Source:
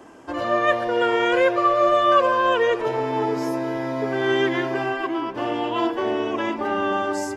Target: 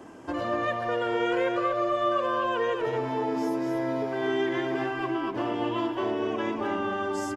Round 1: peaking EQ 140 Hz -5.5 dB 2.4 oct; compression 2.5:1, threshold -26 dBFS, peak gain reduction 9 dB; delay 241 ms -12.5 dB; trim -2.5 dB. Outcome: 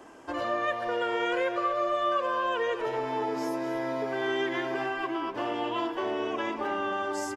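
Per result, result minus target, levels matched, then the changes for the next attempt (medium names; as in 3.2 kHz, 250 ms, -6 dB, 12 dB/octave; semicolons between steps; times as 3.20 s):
125 Hz band -6.5 dB; echo-to-direct -7 dB
change: peaking EQ 140 Hz +5.5 dB 2.4 oct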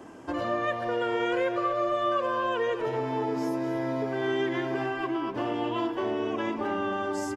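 echo-to-direct -7 dB
change: delay 241 ms -5.5 dB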